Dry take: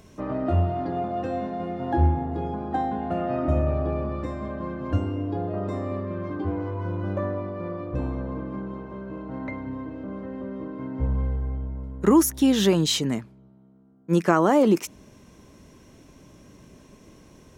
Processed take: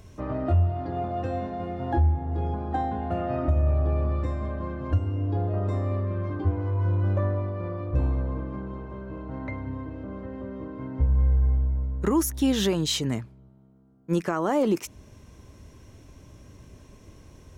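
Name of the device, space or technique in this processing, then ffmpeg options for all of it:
car stereo with a boomy subwoofer: -af "lowshelf=f=130:t=q:w=1.5:g=7.5,alimiter=limit=-12.5dB:level=0:latency=1:release=415,volume=-1.5dB"

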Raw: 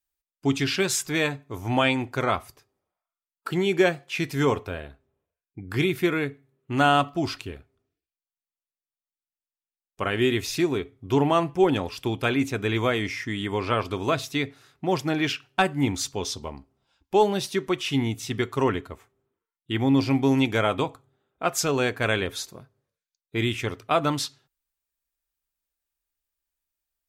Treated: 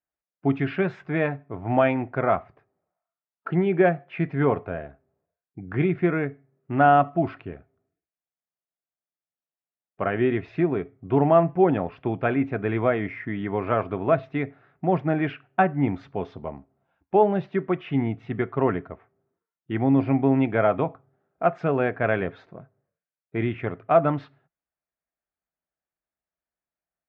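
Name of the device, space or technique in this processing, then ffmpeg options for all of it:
bass cabinet: -af "highpass=84,equalizer=f=170:t=q:w=4:g=7,equalizer=f=670:t=q:w=4:g=8,equalizer=f=1k:t=q:w=4:g=-3,lowpass=f=2k:w=0.5412,lowpass=f=2k:w=1.3066"

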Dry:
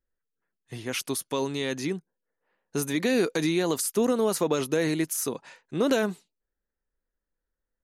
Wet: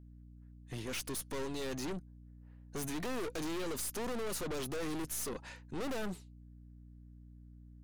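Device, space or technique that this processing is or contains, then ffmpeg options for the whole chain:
valve amplifier with mains hum: -af "aeval=exprs='(tanh(79.4*val(0)+0.55)-tanh(0.55))/79.4':c=same,aeval=exprs='val(0)+0.002*(sin(2*PI*60*n/s)+sin(2*PI*2*60*n/s)/2+sin(2*PI*3*60*n/s)/3+sin(2*PI*4*60*n/s)/4+sin(2*PI*5*60*n/s)/5)':c=same,volume=1dB"

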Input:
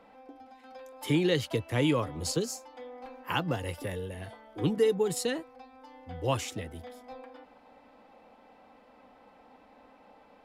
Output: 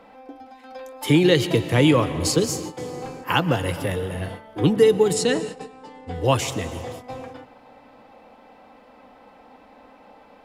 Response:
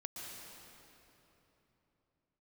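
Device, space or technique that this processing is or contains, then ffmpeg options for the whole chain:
keyed gated reverb: -filter_complex "[0:a]asplit=3[a][b][c];[1:a]atrim=start_sample=2205[d];[b][d]afir=irnorm=-1:irlink=0[e];[c]apad=whole_len=460482[f];[e][f]sidechaingate=range=-18dB:threshold=-48dB:ratio=16:detection=peak,volume=-6dB[g];[a][g]amix=inputs=2:normalize=0,asettb=1/sr,asplit=3[h][i][j];[h]atrim=end=5.134[k];[i]atrim=start=5.13:end=6.15,asetpts=PTS-STARTPTS,afade=t=in:d=0.004:c=qsin,afade=t=out:st=1.016:d=0.004:c=qsin,lowpass=f=9.3k:w=0.5412,lowpass=f=9.3k:w=1.3066[l];[j]atrim=start=6.146[m];[k][l]acrossfade=d=0.004:c1=hsin:c2=qsin[n];[n][m]acrossfade=d=0.004:c1=qsin:c2=hsin,volume=7.5dB"

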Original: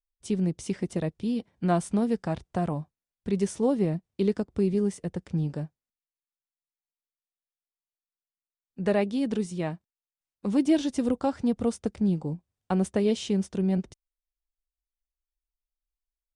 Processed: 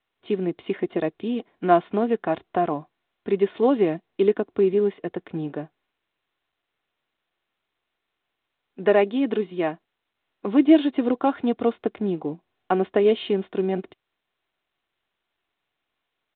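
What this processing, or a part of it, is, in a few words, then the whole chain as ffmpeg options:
telephone: -filter_complex "[0:a]asettb=1/sr,asplit=3[a][b][c];[a]atrim=end=3.544[d];[b]atrim=start=3.54:end=4.06,asetpts=PTS-STARTPTS,afade=t=in:d=0.004:c=qsin,afade=t=out:st=0.516:d=0.004:c=qsin,aemphasis=mode=production:type=75kf[e];[c]atrim=start=4.056[f];[d][e]acrossfade=d=0.004:c1=hsin:c2=qsin[g];[g][f]acrossfade=d=0.004:c1=qsin:c2=hsin,aecho=1:1:2.8:0.37,asettb=1/sr,asplit=3[h][i][j];[h]atrim=end=11.264[k];[i]atrim=start=11.26:end=11.69,asetpts=PTS-STARTPTS,afade=t=in:d=0.004:c=qsin,afade=t=out:st=0.426:d=0.004:c=qsin,highshelf=f=4.2k:g=9.5[l];[j]atrim=start=11.686[m];[k][l]acrossfade=d=0.004:c1=hsin:c2=qsin[n];[n][m]acrossfade=d=0.004:c1=qsin:c2=hsin,highpass=290,lowpass=3.3k,volume=7.5dB" -ar 8000 -c:a pcm_mulaw

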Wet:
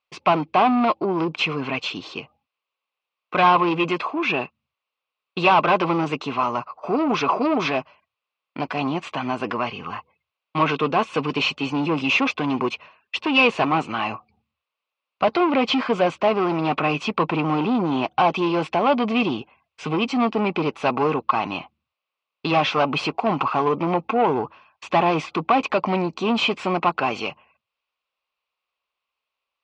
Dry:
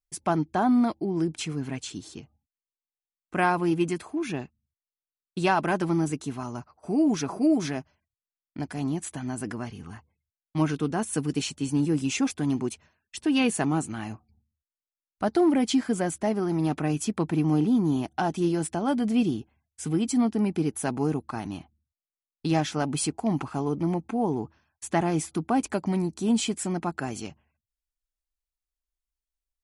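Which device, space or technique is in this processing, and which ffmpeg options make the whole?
overdrive pedal into a guitar cabinet: -filter_complex "[0:a]asplit=2[a][b];[b]highpass=f=720:p=1,volume=22dB,asoftclip=type=tanh:threshold=-11dB[c];[a][c]amix=inputs=2:normalize=0,lowpass=f=3.1k:p=1,volume=-6dB,highpass=100,equalizer=f=210:t=q:w=4:g=-3,equalizer=f=310:t=q:w=4:g=-5,equalizer=f=530:t=q:w=4:g=6,equalizer=f=1.1k:t=q:w=4:g=10,equalizer=f=1.7k:t=q:w=4:g=-8,equalizer=f=2.6k:t=q:w=4:g=9,lowpass=f=4.4k:w=0.5412,lowpass=f=4.4k:w=1.3066"

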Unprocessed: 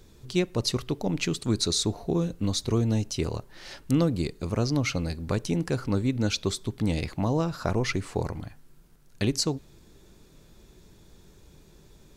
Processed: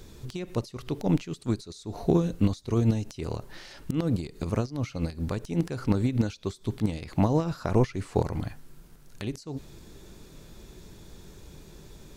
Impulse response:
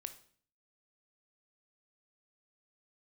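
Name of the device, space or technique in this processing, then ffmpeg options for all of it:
de-esser from a sidechain: -filter_complex "[0:a]asplit=2[a][b];[b]highpass=f=4k:w=0.5412,highpass=f=4k:w=1.3066,apad=whole_len=536328[c];[a][c]sidechaincompress=threshold=-55dB:ratio=6:attack=3.8:release=78,volume=6dB"

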